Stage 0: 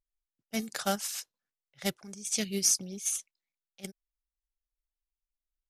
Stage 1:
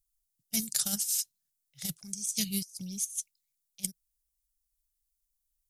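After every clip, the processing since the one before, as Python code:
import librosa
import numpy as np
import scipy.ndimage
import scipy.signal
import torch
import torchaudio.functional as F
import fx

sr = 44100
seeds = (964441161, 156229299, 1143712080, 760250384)

y = fx.curve_eq(x, sr, hz=(160.0, 380.0, 1500.0, 4100.0, 9700.0), db=(0, -19, -16, 0, 10))
y = fx.over_compress(y, sr, threshold_db=-32.0, ratio=-0.5)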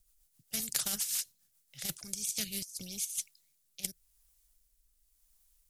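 y = fx.rotary_switch(x, sr, hz=7.5, then_hz=0.9, switch_at_s=1.45)
y = fx.spectral_comp(y, sr, ratio=2.0)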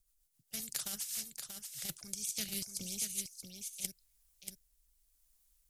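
y = fx.rider(x, sr, range_db=10, speed_s=0.5)
y = y + 10.0 ** (-6.5 / 20.0) * np.pad(y, (int(634 * sr / 1000.0), 0))[:len(y)]
y = y * 10.0 ** (-2.5 / 20.0)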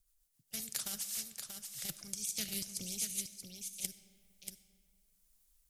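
y = fx.rev_freeverb(x, sr, rt60_s=2.0, hf_ratio=0.65, predelay_ms=15, drr_db=13.5)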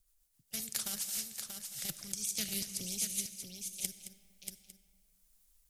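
y = x + 10.0 ** (-12.5 / 20.0) * np.pad(x, (int(219 * sr / 1000.0), 0))[:len(x)]
y = y * 10.0 ** (2.0 / 20.0)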